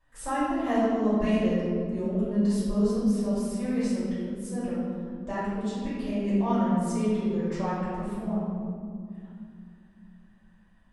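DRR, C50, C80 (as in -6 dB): -12.0 dB, -3.0 dB, 0.0 dB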